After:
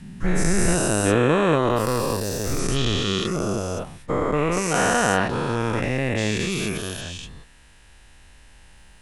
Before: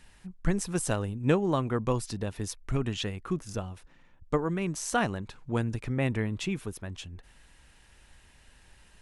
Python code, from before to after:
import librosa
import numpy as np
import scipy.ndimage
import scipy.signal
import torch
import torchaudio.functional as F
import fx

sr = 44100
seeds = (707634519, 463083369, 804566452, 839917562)

y = fx.spec_dilate(x, sr, span_ms=480)
y = fx.resample_linear(y, sr, factor=2, at=(1.71, 2.59))